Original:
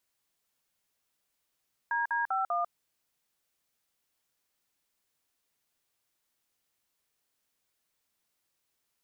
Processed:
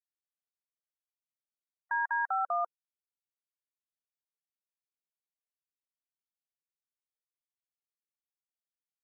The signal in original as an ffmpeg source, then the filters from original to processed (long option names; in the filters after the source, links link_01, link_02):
-f lavfi -i "aevalsrc='0.0335*clip(min(mod(t,0.197),0.146-mod(t,0.197))/0.002,0,1)*(eq(floor(t/0.197),0)*(sin(2*PI*941*mod(t,0.197))+sin(2*PI*1633*mod(t,0.197)))+eq(floor(t/0.197),1)*(sin(2*PI*941*mod(t,0.197))+sin(2*PI*1633*mod(t,0.197)))+eq(floor(t/0.197),2)*(sin(2*PI*770*mod(t,0.197))+sin(2*PI*1336*mod(t,0.197)))+eq(floor(t/0.197),3)*(sin(2*PI*697*mod(t,0.197))+sin(2*PI*1209*mod(t,0.197))))':duration=0.788:sample_rate=44100"
-af "afftfilt=real='re*gte(hypot(re,im),0.00891)':imag='im*gte(hypot(re,im),0.00891)':win_size=1024:overlap=0.75"